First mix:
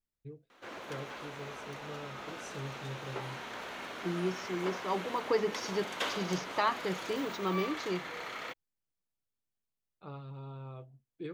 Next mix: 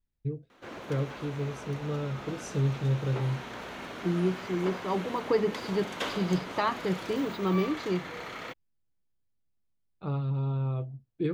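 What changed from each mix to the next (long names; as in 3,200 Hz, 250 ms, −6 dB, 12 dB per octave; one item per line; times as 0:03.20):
first voice +6.5 dB
second voice: add linear-phase brick-wall low-pass 5,200 Hz
master: add low-shelf EQ 300 Hz +11.5 dB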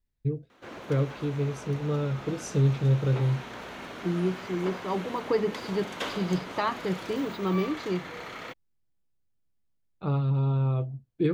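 first voice +4.5 dB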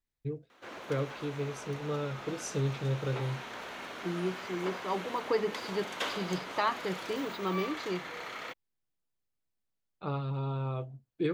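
master: add low-shelf EQ 300 Hz −11.5 dB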